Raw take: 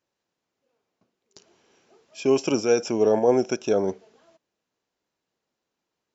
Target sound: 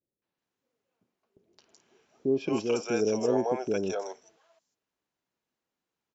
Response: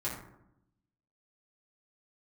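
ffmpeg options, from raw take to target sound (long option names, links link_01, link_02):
-filter_complex "[0:a]acrossover=split=520|5100[link_01][link_02][link_03];[link_02]adelay=220[link_04];[link_03]adelay=380[link_05];[link_01][link_04][link_05]amix=inputs=3:normalize=0,volume=-4dB"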